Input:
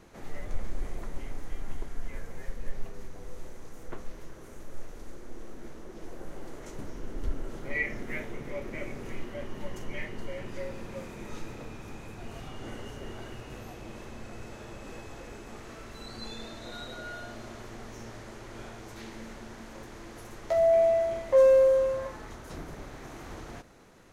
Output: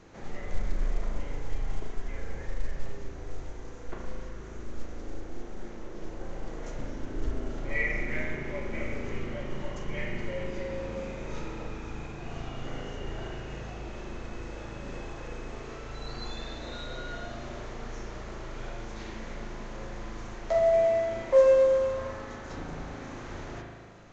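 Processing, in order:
spring reverb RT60 1.5 s, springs 37 ms, chirp 30 ms, DRR 0 dB
mu-law 128 kbit/s 16,000 Hz

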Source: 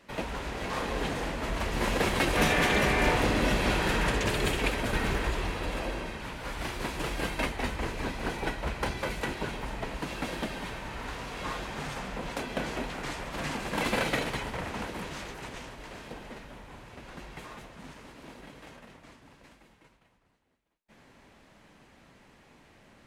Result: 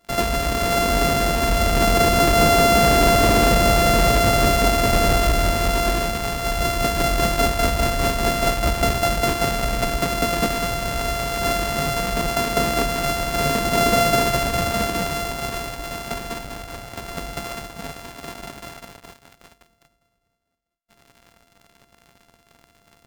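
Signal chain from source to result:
samples sorted by size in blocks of 64 samples
leveller curve on the samples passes 3
level +3 dB

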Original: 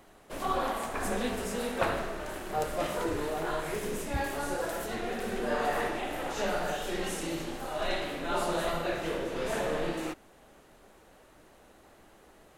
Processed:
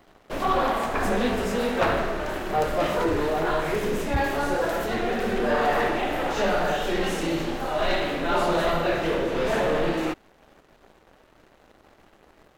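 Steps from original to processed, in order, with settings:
parametric band 10,000 Hz −12 dB 1.2 octaves
leveller curve on the samples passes 2
level +1.5 dB

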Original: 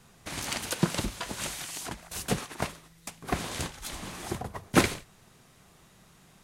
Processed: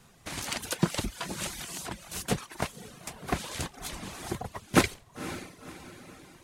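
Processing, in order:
feedback delay with all-pass diffusion 524 ms, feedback 48%, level −12 dB
reverb reduction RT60 0.6 s

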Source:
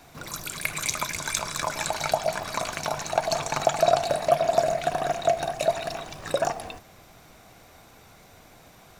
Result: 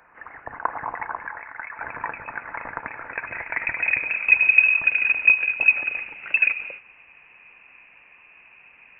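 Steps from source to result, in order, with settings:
high-pass filter sweep 1,800 Hz → 620 Hz, 0:02.96–0:04.65
0:01.27–0:01.82: three-way crossover with the lows and the highs turned down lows −12 dB, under 520 Hz, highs −14 dB, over 2,000 Hz
voice inversion scrambler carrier 3,200 Hz
level −1 dB

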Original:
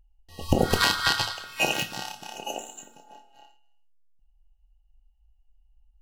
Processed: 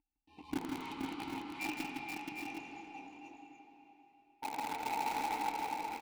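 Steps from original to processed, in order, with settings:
reverb reduction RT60 1.8 s
sound drawn into the spectrogram noise, 0:04.42–0:05.48, 460–1,000 Hz −29 dBFS
pitch shifter −1 semitone
tube saturation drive 33 dB, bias 0.45
formant filter u
in parallel at −3 dB: bit reduction 7 bits
on the sum: multi-tap delay 159/166/476/745/766 ms −5.5/−11.5/−4/−12.5/−7.5 dB
on a send at −3.5 dB: convolution reverb RT60 3.5 s, pre-delay 54 ms
on the sum: level +5.5 dB

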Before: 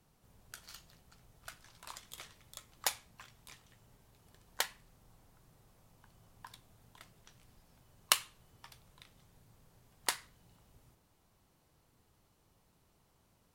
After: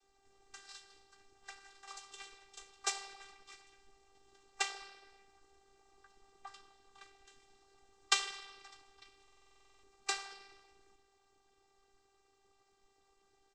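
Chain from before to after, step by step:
convolution reverb RT60 1.5 s, pre-delay 8 ms, DRR 3 dB
cochlear-implant simulation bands 12
double-tracking delay 15 ms −13.5 dB
phases set to zero 392 Hz
buffer that repeats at 0:09.23, samples 2,048, times 12
level +1.5 dB

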